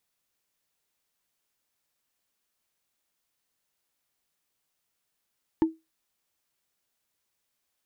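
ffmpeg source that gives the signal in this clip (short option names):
-f lavfi -i "aevalsrc='0.188*pow(10,-3*t/0.21)*sin(2*PI*322*t)+0.0531*pow(10,-3*t/0.062)*sin(2*PI*887.8*t)+0.015*pow(10,-3*t/0.028)*sin(2*PI*1740.1*t)+0.00422*pow(10,-3*t/0.015)*sin(2*PI*2876.4*t)+0.00119*pow(10,-3*t/0.009)*sin(2*PI*4295.5*t)':d=0.45:s=44100"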